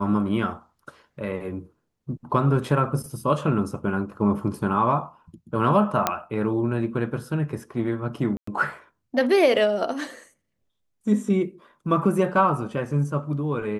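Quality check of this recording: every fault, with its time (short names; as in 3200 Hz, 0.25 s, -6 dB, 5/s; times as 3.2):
6.07 pop -5 dBFS
8.37–8.47 gap 0.104 s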